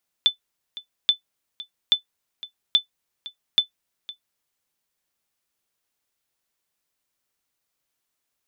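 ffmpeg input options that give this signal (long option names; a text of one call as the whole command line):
ffmpeg -f lavfi -i "aevalsrc='0.422*(sin(2*PI*3510*mod(t,0.83))*exp(-6.91*mod(t,0.83)/0.11)+0.119*sin(2*PI*3510*max(mod(t,0.83)-0.51,0))*exp(-6.91*max(mod(t,0.83)-0.51,0)/0.11))':duration=4.15:sample_rate=44100" out.wav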